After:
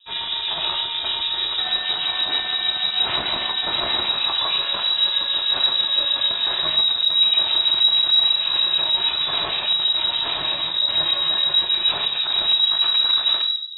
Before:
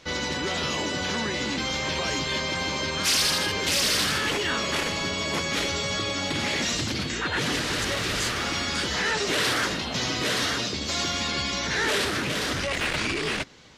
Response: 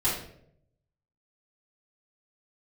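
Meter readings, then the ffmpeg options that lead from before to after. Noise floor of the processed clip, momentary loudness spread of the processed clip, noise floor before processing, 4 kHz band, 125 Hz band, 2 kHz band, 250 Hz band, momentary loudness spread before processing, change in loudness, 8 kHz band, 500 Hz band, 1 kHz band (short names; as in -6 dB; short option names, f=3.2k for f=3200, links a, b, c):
-27 dBFS, 6 LU, -31 dBFS, +11.0 dB, under -10 dB, -4.0 dB, -12.0 dB, 5 LU, +7.5 dB, under -40 dB, -6.0 dB, +0.5 dB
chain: -filter_complex "[0:a]asubboost=boost=9:cutoff=85,alimiter=limit=-17.5dB:level=0:latency=1:release=93,aexciter=amount=2.7:drive=7:freq=2.9k,asuperstop=centerf=1800:order=12:qfactor=4.2,adynamicsmooth=sensitivity=2:basefreq=640,acrossover=split=2200[a][b];[a]aeval=exprs='val(0)*(1-0.7/2+0.7/2*cos(2*PI*6.4*n/s))':c=same[c];[b]aeval=exprs='val(0)*(1-0.7/2-0.7/2*cos(2*PI*6.4*n/s))':c=same[d];[c][d]amix=inputs=2:normalize=0,asplit=2[e][f];[1:a]atrim=start_sample=2205,lowshelf=f=390:g=8.5[g];[f][g]afir=irnorm=-1:irlink=0,volume=-11.5dB[h];[e][h]amix=inputs=2:normalize=0,asoftclip=type=tanh:threshold=-7.5dB,lowpass=f=3.3k:t=q:w=0.5098,lowpass=f=3.3k:t=q:w=0.6013,lowpass=f=3.3k:t=q:w=0.9,lowpass=f=3.3k:t=q:w=2.563,afreqshift=-3900"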